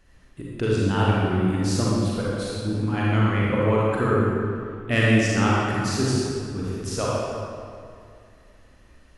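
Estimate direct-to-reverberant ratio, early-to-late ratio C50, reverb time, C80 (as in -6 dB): -6.0 dB, -4.0 dB, 2.3 s, -1.5 dB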